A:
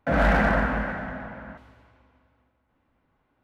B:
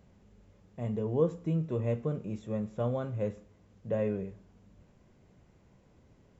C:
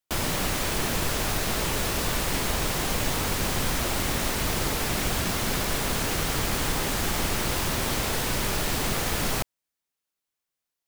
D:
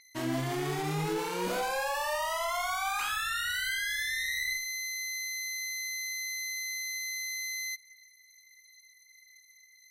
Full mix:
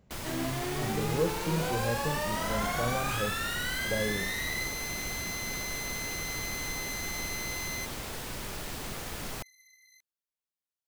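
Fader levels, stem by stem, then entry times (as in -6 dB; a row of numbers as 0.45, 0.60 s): -17.0, -2.0, -11.5, -2.0 dB; 2.30, 0.00, 0.00, 0.10 s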